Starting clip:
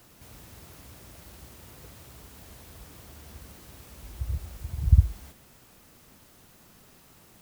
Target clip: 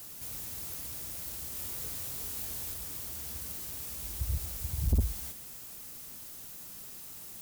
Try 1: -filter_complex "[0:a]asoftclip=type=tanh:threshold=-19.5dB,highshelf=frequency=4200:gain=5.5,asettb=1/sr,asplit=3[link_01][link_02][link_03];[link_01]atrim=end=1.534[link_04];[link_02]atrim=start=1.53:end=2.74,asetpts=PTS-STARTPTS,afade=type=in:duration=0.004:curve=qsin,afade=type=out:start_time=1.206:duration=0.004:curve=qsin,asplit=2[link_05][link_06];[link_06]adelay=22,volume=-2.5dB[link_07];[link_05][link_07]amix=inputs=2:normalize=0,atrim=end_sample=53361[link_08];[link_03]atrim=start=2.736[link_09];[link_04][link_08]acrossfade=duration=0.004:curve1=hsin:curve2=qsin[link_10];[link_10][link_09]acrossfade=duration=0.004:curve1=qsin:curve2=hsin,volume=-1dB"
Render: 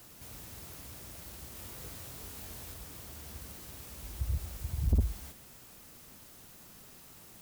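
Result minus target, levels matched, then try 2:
8,000 Hz band −5.0 dB
-filter_complex "[0:a]asoftclip=type=tanh:threshold=-19.5dB,highshelf=frequency=4200:gain=15.5,asettb=1/sr,asplit=3[link_01][link_02][link_03];[link_01]atrim=end=1.534[link_04];[link_02]atrim=start=1.53:end=2.74,asetpts=PTS-STARTPTS,afade=type=in:duration=0.004:curve=qsin,afade=type=out:start_time=1.206:duration=0.004:curve=qsin,asplit=2[link_05][link_06];[link_06]adelay=22,volume=-2.5dB[link_07];[link_05][link_07]amix=inputs=2:normalize=0,atrim=end_sample=53361[link_08];[link_03]atrim=start=2.736[link_09];[link_04][link_08]acrossfade=duration=0.004:curve1=hsin:curve2=qsin[link_10];[link_10][link_09]acrossfade=duration=0.004:curve1=qsin:curve2=hsin,volume=-1dB"

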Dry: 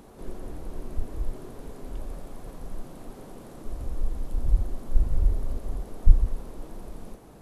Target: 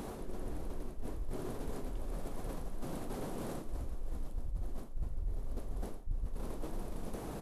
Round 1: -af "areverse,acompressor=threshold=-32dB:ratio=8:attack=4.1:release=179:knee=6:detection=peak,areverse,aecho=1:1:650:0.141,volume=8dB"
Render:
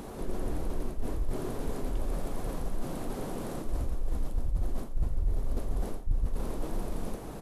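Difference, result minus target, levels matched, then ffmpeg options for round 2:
downward compressor: peak gain reduction −9 dB
-af "areverse,acompressor=threshold=-42dB:ratio=8:attack=4.1:release=179:knee=6:detection=peak,areverse,aecho=1:1:650:0.141,volume=8dB"

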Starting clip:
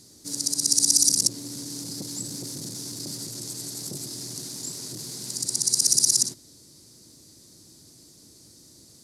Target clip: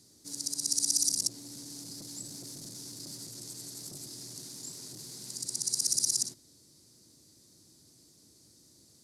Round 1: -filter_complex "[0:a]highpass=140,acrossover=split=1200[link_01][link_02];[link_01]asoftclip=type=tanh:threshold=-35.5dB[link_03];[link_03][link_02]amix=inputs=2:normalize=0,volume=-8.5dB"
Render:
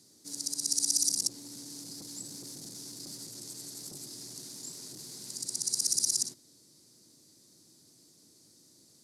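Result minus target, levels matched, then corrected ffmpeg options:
125 Hz band −3.0 dB
-filter_complex "[0:a]highpass=42,acrossover=split=1200[link_01][link_02];[link_01]asoftclip=type=tanh:threshold=-35.5dB[link_03];[link_03][link_02]amix=inputs=2:normalize=0,volume=-8.5dB"

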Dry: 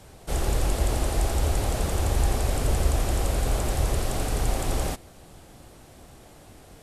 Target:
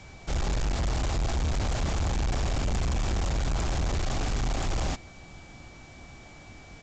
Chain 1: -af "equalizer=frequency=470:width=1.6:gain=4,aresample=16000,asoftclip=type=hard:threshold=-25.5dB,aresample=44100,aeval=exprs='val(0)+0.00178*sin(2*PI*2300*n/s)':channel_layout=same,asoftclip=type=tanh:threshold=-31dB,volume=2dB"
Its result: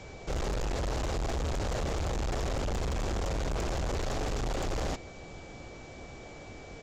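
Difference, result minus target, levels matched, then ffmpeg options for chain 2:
soft clipping: distortion +18 dB; 500 Hz band +6.0 dB
-af "equalizer=frequency=470:width=1.6:gain=-6.5,aresample=16000,asoftclip=type=hard:threshold=-25.5dB,aresample=44100,aeval=exprs='val(0)+0.00178*sin(2*PI*2300*n/s)':channel_layout=same,asoftclip=type=tanh:threshold=-19.5dB,volume=2dB"

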